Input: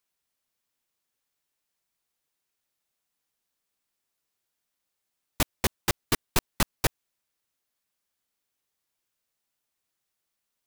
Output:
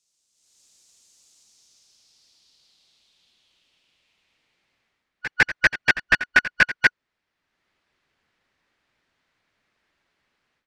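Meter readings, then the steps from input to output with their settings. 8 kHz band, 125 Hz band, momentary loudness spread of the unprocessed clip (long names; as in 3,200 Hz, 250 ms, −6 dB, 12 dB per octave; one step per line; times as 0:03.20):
−8.5 dB, −5.5 dB, 3 LU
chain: band-splitting scrambler in four parts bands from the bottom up 3142
echo ahead of the sound 153 ms −14 dB
automatic gain control gain up to 16.5 dB
low-pass filter sweep 7,000 Hz → 1,800 Hz, 0:01.29–0:05.09
drawn EQ curve 270 Hz 0 dB, 1,700 Hz −6 dB, 4,400 Hz +7 dB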